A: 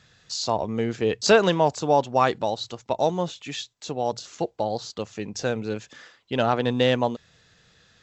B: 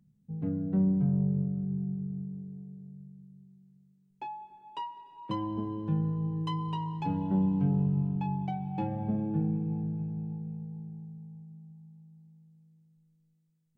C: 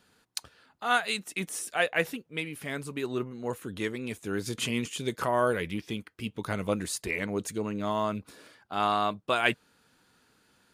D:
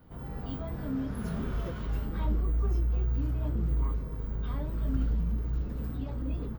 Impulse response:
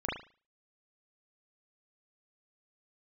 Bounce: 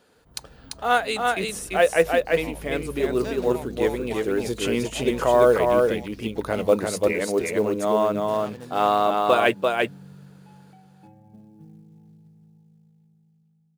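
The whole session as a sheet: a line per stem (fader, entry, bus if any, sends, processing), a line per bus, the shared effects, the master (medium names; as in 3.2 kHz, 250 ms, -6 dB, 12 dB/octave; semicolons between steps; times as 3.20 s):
-17.0 dB, 1.95 s, no send, no echo send, median filter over 25 samples; treble shelf 2.9 kHz +11 dB
-18.0 dB, 2.25 s, no send, echo send -23 dB, none
+1.0 dB, 0.00 s, no send, echo send -3 dB, peaking EQ 510 Hz +11 dB 1.4 oct; hum notches 50/100/150/200 Hz
-13.0 dB, 0.15 s, no send, no echo send, none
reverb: none
echo: delay 342 ms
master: short-mantissa float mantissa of 4-bit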